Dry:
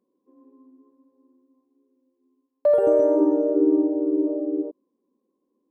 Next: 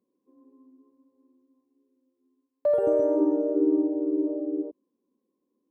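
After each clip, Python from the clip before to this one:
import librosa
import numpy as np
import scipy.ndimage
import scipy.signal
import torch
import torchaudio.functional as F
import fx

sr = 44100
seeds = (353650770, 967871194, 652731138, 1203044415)

y = scipy.signal.sosfilt(scipy.signal.butter(2, 63.0, 'highpass', fs=sr, output='sos'), x)
y = fx.low_shelf(y, sr, hz=150.0, db=10.0)
y = y * 10.0 ** (-5.5 / 20.0)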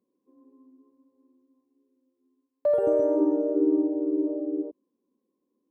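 y = x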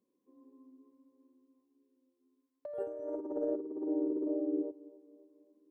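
y = fx.echo_feedback(x, sr, ms=271, feedback_pct=54, wet_db=-20.0)
y = fx.over_compress(y, sr, threshold_db=-27.0, ratio=-0.5)
y = y * 10.0 ** (-7.0 / 20.0)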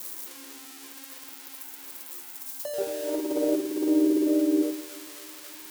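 y = x + 0.5 * 10.0 ** (-33.5 / 20.0) * np.diff(np.sign(x), prepend=np.sign(x[:1]))
y = fx.room_shoebox(y, sr, seeds[0], volume_m3=870.0, walls='furnished', distance_m=0.94)
y = y * 10.0 ** (8.0 / 20.0)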